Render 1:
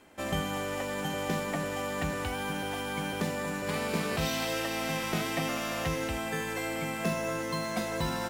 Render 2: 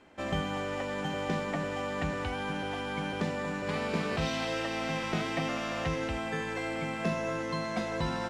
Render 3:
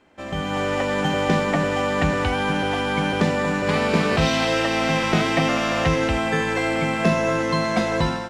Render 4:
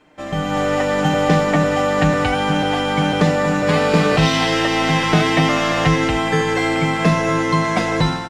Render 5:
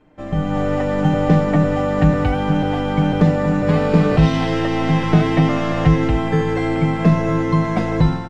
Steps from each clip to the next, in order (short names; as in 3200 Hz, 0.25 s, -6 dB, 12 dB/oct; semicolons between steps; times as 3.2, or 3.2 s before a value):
air absorption 96 m
AGC gain up to 12 dB
comb 6.6 ms, depth 59%; gain +3 dB
tilt -3 dB/oct; gain -4.5 dB